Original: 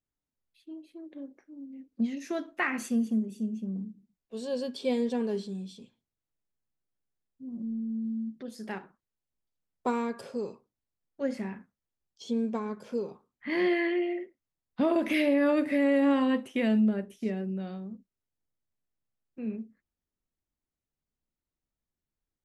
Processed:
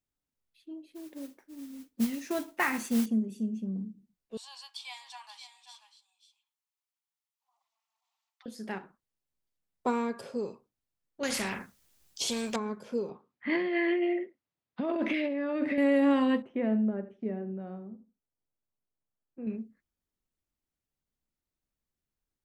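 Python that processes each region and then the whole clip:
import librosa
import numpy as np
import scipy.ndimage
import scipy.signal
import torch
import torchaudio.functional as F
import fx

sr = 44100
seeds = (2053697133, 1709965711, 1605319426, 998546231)

y = fx.chain(x, sr, fx.peak_eq(hz=910.0, db=8.5, octaves=0.22),
    fx.mod_noise(seeds[0], snr_db=15), at=(0.93, 3.06))
y = fx.chain(y, sr, fx.steep_highpass(hz=800.0, slope=72),
    fx.peak_eq(hz=1600.0, db=-8.5, octaves=0.34),
    fx.echo_single(ms=536, db=-11.5), at=(4.37, 8.46))
y = fx.chain(y, sr, fx.high_shelf(hz=2300.0, db=10.0),
    fx.spectral_comp(ratio=2.0), at=(11.23, 12.56))
y = fx.chain(y, sr, fx.over_compress(threshold_db=-29.0, ratio=-1.0),
    fx.bandpass_edges(low_hz=110.0, high_hz=3700.0), at=(13.09, 15.78))
y = fx.chain(y, sr, fx.lowpass(hz=1200.0, slope=12),
    fx.low_shelf(hz=230.0, db=-6.0),
    fx.echo_feedback(ms=82, feedback_pct=17, wet_db=-14.5), at=(16.42, 19.47))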